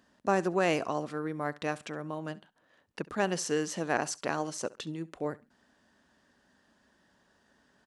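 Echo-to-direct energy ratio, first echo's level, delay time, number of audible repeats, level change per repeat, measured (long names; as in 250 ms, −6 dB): −21.0 dB, −21.0 dB, 68 ms, 2, −13.0 dB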